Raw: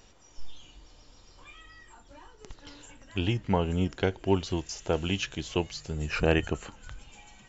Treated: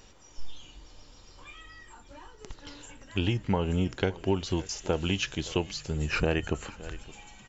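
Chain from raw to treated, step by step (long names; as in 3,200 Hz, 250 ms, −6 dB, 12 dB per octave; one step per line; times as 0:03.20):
notch filter 690 Hz, Q 18
on a send: single-tap delay 567 ms −22.5 dB
on the sum: downward compressor 4 to 1, threshold −25 dBFS, peak gain reduction 7 dB
level +2.5 dB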